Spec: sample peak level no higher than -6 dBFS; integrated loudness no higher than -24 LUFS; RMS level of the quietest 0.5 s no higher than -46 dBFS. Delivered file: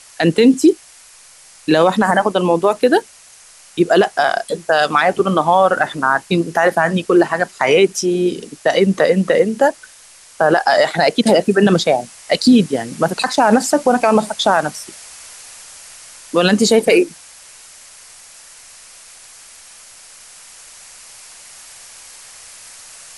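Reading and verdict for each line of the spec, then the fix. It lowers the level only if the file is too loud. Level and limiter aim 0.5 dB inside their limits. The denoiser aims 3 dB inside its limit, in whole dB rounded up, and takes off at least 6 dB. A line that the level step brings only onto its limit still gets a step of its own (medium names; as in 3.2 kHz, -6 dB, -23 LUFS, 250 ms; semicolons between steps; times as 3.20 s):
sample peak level -2.0 dBFS: fail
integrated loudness -15.0 LUFS: fail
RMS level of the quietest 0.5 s -44 dBFS: fail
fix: trim -9.5 dB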